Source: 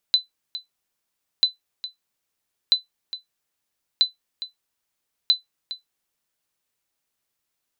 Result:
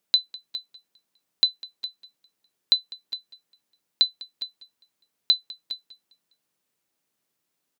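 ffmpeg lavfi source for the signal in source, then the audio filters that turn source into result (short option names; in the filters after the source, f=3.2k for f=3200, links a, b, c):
-f lavfi -i "aevalsrc='0.398*(sin(2*PI*4010*mod(t,1.29))*exp(-6.91*mod(t,1.29)/0.14)+0.188*sin(2*PI*4010*max(mod(t,1.29)-0.41,0))*exp(-6.91*max(mod(t,1.29)-0.41,0)/0.14))':d=6.45:s=44100"
-af "highpass=180,lowshelf=f=390:g=11,aecho=1:1:201|402|603:0.0944|0.0434|0.02"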